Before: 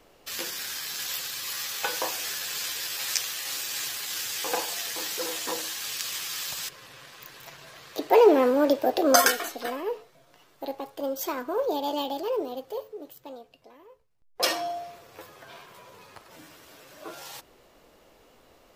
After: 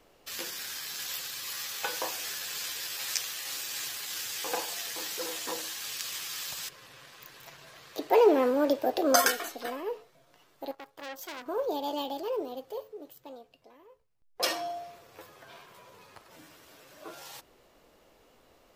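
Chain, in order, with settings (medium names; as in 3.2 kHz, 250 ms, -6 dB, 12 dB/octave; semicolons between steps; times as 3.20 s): 10.71–11.46 s: transformer saturation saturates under 3.8 kHz; trim -4 dB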